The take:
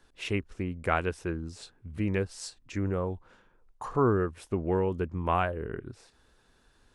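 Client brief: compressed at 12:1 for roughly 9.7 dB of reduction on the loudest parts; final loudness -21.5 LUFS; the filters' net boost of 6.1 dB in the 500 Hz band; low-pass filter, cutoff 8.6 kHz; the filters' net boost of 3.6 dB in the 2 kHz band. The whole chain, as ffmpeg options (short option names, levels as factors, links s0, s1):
-af "lowpass=8600,equalizer=f=500:t=o:g=7.5,equalizer=f=2000:t=o:g=4.5,acompressor=threshold=0.0501:ratio=12,volume=3.98"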